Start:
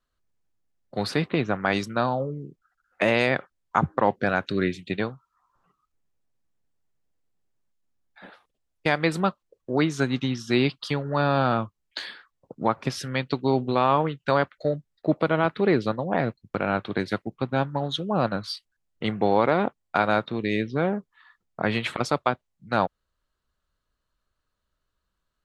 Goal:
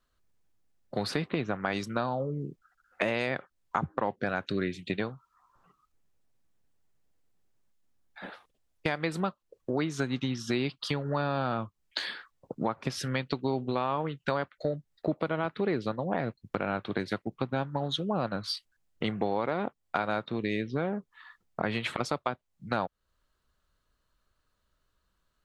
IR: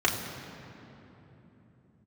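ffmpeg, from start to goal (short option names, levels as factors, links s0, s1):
-af "acompressor=threshold=0.0224:ratio=3,volume=1.5"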